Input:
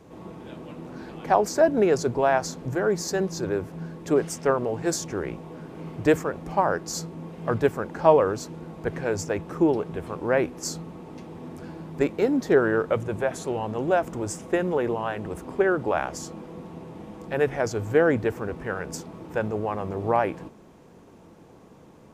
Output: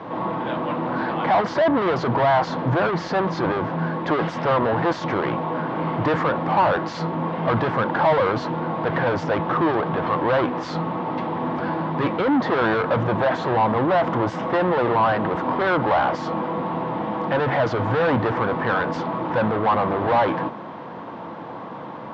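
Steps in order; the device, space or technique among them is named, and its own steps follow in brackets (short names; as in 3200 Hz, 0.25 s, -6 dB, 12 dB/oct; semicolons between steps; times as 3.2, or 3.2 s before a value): overdrive pedal into a guitar cabinet (overdrive pedal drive 36 dB, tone 1700 Hz, clips at -4 dBFS; speaker cabinet 89–3800 Hz, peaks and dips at 120 Hz +5 dB, 410 Hz -9 dB, 1000 Hz +5 dB, 2500 Hz -6 dB); gain -6 dB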